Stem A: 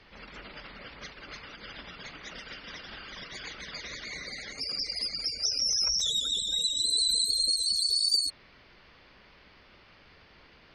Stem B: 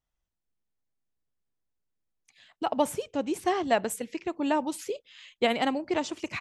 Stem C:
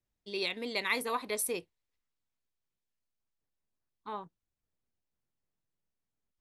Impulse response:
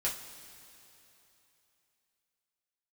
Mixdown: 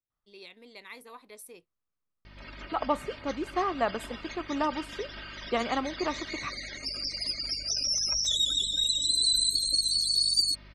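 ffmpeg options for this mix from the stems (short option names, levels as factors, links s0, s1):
-filter_complex "[0:a]aecho=1:1:3.2:0.67,aeval=exprs='val(0)+0.00355*(sin(2*PI*50*n/s)+sin(2*PI*2*50*n/s)/2+sin(2*PI*3*50*n/s)/3+sin(2*PI*4*50*n/s)/4+sin(2*PI*5*50*n/s)/5)':c=same,adelay=2250,volume=0.891[s0];[1:a]lowpass=f=2600:p=1,equalizer=f=1200:t=o:w=0.37:g=13,adelay=100,volume=0.596,asplit=2[s1][s2];[s2]volume=0.0841[s3];[2:a]volume=0.188[s4];[3:a]atrim=start_sample=2205[s5];[s3][s5]afir=irnorm=-1:irlink=0[s6];[s0][s1][s4][s6]amix=inputs=4:normalize=0"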